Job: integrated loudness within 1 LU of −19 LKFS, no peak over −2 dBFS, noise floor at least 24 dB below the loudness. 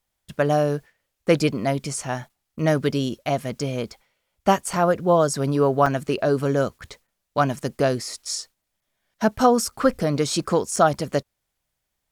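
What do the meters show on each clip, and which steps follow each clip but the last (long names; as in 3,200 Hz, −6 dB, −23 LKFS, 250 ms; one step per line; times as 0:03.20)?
number of dropouts 3; longest dropout 4.9 ms; integrated loudness −23.0 LKFS; sample peak −5.0 dBFS; target loudness −19.0 LKFS
→ repair the gap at 0:04.73/0:05.86/0:10.76, 4.9 ms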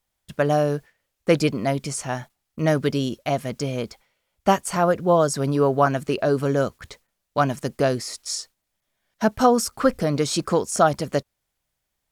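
number of dropouts 0; integrated loudness −23.0 LKFS; sample peak −5.0 dBFS; target loudness −19.0 LKFS
→ level +4 dB
brickwall limiter −2 dBFS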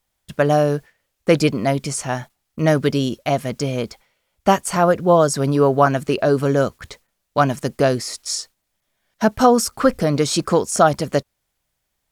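integrated loudness −19.0 LKFS; sample peak −2.0 dBFS; background noise floor −75 dBFS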